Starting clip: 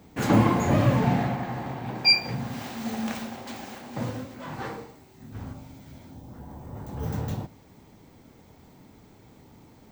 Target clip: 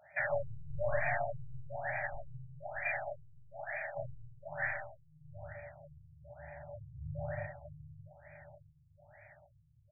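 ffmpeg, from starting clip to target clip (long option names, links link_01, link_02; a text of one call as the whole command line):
ffmpeg -i in.wav -filter_complex "[0:a]asplit=3[link_01][link_02][link_03];[link_01]bandpass=frequency=530:width_type=q:width=8,volume=0dB[link_04];[link_02]bandpass=frequency=1840:width_type=q:width=8,volume=-6dB[link_05];[link_03]bandpass=frequency=2480:width_type=q:width=8,volume=-9dB[link_06];[link_04][link_05][link_06]amix=inputs=3:normalize=0,aeval=exprs='0.0891*(cos(1*acos(clip(val(0)/0.0891,-1,1)))-cos(1*PI/2))+0.00355*(cos(4*acos(clip(val(0)/0.0891,-1,1)))-cos(4*PI/2))+0.01*(cos(5*acos(clip(val(0)/0.0891,-1,1)))-cos(5*PI/2))':channel_layout=same,asplit=2[link_07][link_08];[link_08]aecho=0:1:40|86|138.9|199.7|269.7:0.631|0.398|0.251|0.158|0.1[link_09];[link_07][link_09]amix=inputs=2:normalize=0,asubboost=boost=6.5:cutoff=100,acrossover=split=140|3000[link_10][link_11][link_12];[link_11]acompressor=threshold=-38dB:ratio=3[link_13];[link_10][link_13][link_12]amix=inputs=3:normalize=0,tiltshelf=frequency=750:gain=-6,asplit=2[link_14][link_15];[link_15]aecho=0:1:616|1232|1848|2464:0.316|0.123|0.0481|0.0188[link_16];[link_14][link_16]amix=inputs=2:normalize=0,afftfilt=real='re*(1-between(b*sr/4096,170,570))':imag='im*(1-between(b*sr/4096,170,570))':win_size=4096:overlap=0.75,acontrast=71,afftfilt=real='re*lt(b*sr/1024,240*pow(2500/240,0.5+0.5*sin(2*PI*1.1*pts/sr)))':imag='im*lt(b*sr/1024,240*pow(2500/240,0.5+0.5*sin(2*PI*1.1*pts/sr)))':win_size=1024:overlap=0.75,volume=3.5dB" out.wav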